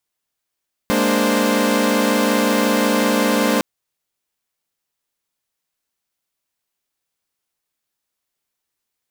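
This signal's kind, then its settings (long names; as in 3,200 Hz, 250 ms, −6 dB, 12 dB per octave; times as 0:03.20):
held notes G#3/A#3/D4/C5 saw, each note −18 dBFS 2.71 s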